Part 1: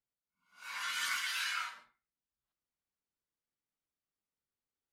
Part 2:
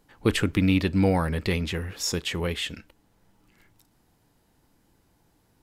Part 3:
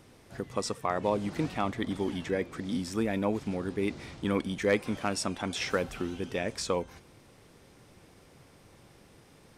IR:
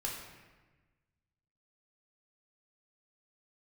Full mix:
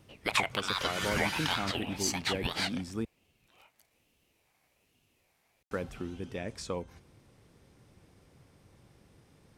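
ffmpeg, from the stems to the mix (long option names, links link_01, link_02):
-filter_complex "[0:a]volume=-0.5dB[link_01];[1:a]highpass=frequency=1400:width_type=q:width=2.9,aeval=exprs='val(0)*sin(2*PI*1000*n/s+1000*0.3/1.2*sin(2*PI*1.2*n/s))':channel_layout=same,volume=-1dB[link_02];[2:a]volume=-7.5dB,asplit=3[link_03][link_04][link_05];[link_03]atrim=end=3.05,asetpts=PTS-STARTPTS,afade=type=out:start_time=3.046:duration=0.004:curve=hsin[link_06];[link_04]atrim=start=3.05:end=5.71,asetpts=PTS-STARTPTS,volume=0[link_07];[link_05]atrim=start=5.71,asetpts=PTS-STARTPTS,afade=type=in:duration=0.004:curve=hsin[link_08];[link_06][link_07][link_08]concat=n=3:v=0:a=1[link_09];[link_01][link_02][link_09]amix=inputs=3:normalize=0,equalizer=frequency=79:width_type=o:width=3:gain=7"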